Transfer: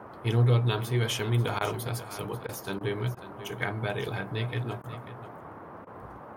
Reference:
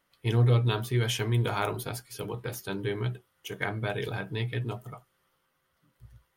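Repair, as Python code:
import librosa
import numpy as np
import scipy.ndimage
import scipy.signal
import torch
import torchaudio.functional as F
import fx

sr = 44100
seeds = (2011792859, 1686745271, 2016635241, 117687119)

y = fx.fix_interpolate(x, sr, at_s=(1.59, 2.47, 2.79, 3.15, 4.82, 5.85), length_ms=17.0)
y = fx.noise_reduce(y, sr, print_start_s=5.52, print_end_s=6.02, reduce_db=29.0)
y = fx.fix_echo_inverse(y, sr, delay_ms=540, level_db=-13.5)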